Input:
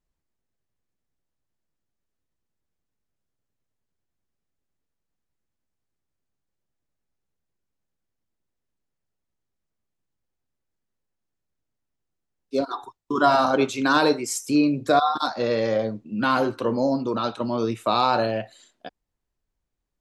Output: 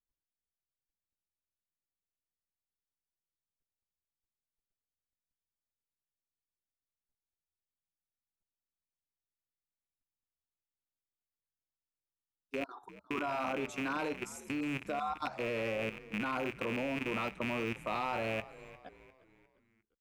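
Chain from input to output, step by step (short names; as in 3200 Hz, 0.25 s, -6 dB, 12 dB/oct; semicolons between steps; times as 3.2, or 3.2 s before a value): rattling part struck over -37 dBFS, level -13 dBFS; bell 4200 Hz -10 dB 0.8 oct; level quantiser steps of 13 dB; on a send: frequency-shifting echo 0.352 s, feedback 45%, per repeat -81 Hz, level -17.5 dB; on the sum: gain -9 dB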